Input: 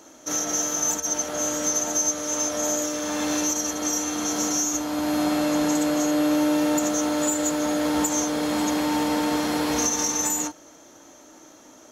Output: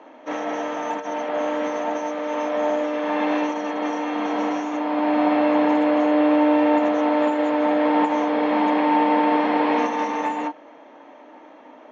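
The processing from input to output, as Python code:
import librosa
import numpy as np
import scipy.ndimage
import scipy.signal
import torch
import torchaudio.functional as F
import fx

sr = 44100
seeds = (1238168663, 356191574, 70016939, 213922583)

y = fx.cabinet(x, sr, low_hz=250.0, low_slope=24, high_hz=2500.0, hz=(350.0, 910.0, 1400.0), db=(-8, 4, -8))
y = F.gain(torch.from_numpy(y), 7.0).numpy()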